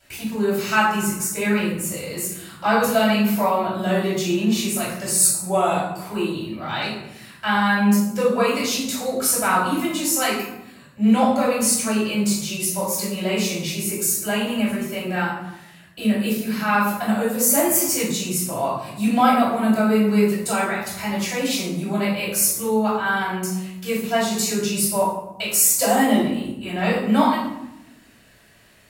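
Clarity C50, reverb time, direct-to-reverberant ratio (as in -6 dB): 2.5 dB, 0.85 s, -8.5 dB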